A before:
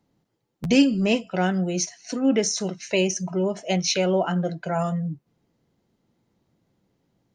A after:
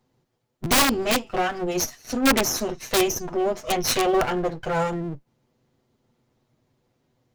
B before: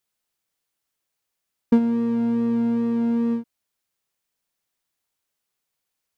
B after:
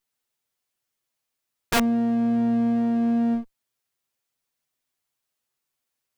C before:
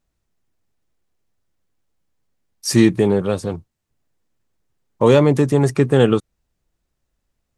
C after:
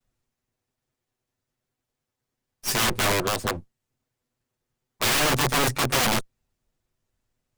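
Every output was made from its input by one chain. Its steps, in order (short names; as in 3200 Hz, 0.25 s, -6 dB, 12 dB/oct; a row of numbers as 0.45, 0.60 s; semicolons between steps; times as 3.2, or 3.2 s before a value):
minimum comb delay 8 ms; wrapped overs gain 15 dB; match loudness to -23 LUFS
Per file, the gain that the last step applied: +2.5, 0.0, -2.0 dB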